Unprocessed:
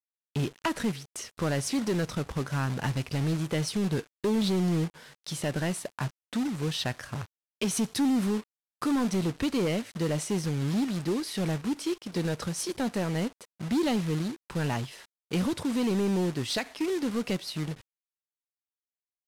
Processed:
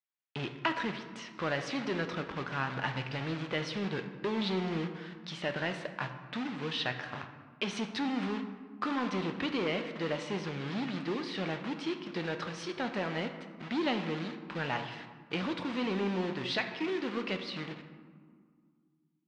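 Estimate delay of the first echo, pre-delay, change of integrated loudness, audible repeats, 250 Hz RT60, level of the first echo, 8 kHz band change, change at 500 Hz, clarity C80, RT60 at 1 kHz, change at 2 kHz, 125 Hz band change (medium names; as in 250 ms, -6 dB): no echo, 3 ms, -5.0 dB, no echo, 2.9 s, no echo, -16.5 dB, -4.0 dB, 10.0 dB, 1.9 s, +2.0 dB, -9.5 dB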